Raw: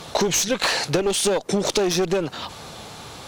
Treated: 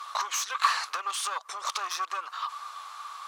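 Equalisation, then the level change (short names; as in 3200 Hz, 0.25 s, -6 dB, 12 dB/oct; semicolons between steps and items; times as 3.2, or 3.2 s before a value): ladder high-pass 1100 Hz, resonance 85%; +3.0 dB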